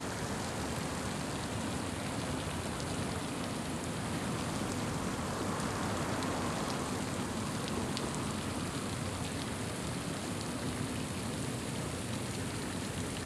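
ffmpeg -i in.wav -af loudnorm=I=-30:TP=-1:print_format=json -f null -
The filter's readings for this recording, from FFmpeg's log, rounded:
"input_i" : "-36.7",
"input_tp" : "-14.8",
"input_lra" : "1.9",
"input_thresh" : "-46.7",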